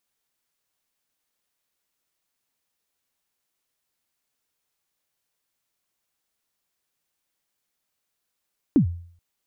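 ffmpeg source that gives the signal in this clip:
ffmpeg -f lavfi -i "aevalsrc='0.299*pow(10,-3*t/0.54)*sin(2*PI*(330*0.1/log(86/330)*(exp(log(86/330)*min(t,0.1)/0.1)-1)+86*max(t-0.1,0)))':duration=0.43:sample_rate=44100" out.wav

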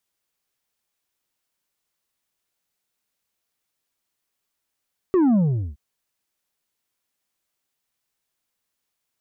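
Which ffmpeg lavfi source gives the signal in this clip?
ffmpeg -f lavfi -i "aevalsrc='0.178*clip((0.62-t)/0.41,0,1)*tanh(1.78*sin(2*PI*390*0.62/log(65/390)*(exp(log(65/390)*t/0.62)-1)))/tanh(1.78)':duration=0.62:sample_rate=44100" out.wav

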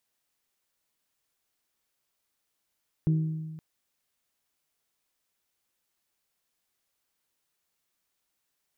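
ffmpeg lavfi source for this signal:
ffmpeg -f lavfi -i "aevalsrc='0.106*pow(10,-3*t/1.53)*sin(2*PI*158*t)+0.0299*pow(10,-3*t/0.942)*sin(2*PI*316*t)+0.00841*pow(10,-3*t/0.829)*sin(2*PI*379.2*t)+0.00237*pow(10,-3*t/0.709)*sin(2*PI*474*t)+0.000668*pow(10,-3*t/0.58)*sin(2*PI*632*t)':duration=0.52:sample_rate=44100" out.wav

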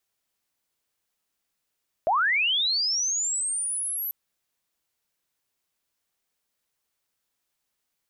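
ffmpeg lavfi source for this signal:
ffmpeg -f lavfi -i "aevalsrc='pow(10,(-19-8.5*t/2.04)/20)*sin(2*PI*(600*t+11400*t*t/(2*2.04)))':duration=2.04:sample_rate=44100" out.wav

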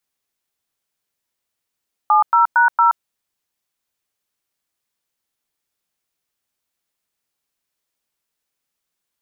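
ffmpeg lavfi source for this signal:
ffmpeg -f lavfi -i "aevalsrc='0.237*clip(min(mod(t,0.229),0.125-mod(t,0.229))/0.002,0,1)*(eq(floor(t/0.229),0)*(sin(2*PI*852*mod(t,0.229))+sin(2*PI*1209*mod(t,0.229)))+eq(floor(t/0.229),1)*(sin(2*PI*941*mod(t,0.229))+sin(2*PI*1336*mod(t,0.229)))+eq(floor(t/0.229),2)*(sin(2*PI*941*mod(t,0.229))+sin(2*PI*1477*mod(t,0.229)))+eq(floor(t/0.229),3)*(sin(2*PI*941*mod(t,0.229))+sin(2*PI*1336*mod(t,0.229))))':duration=0.916:sample_rate=44100" out.wav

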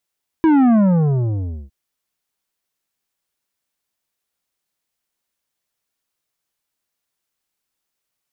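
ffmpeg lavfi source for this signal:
ffmpeg -f lavfi -i "aevalsrc='0.282*clip((1.26-t)/0.97,0,1)*tanh(3.16*sin(2*PI*330*1.26/log(65/330)*(exp(log(65/330)*t/1.26)-1)))/tanh(3.16)':duration=1.26:sample_rate=44100" out.wav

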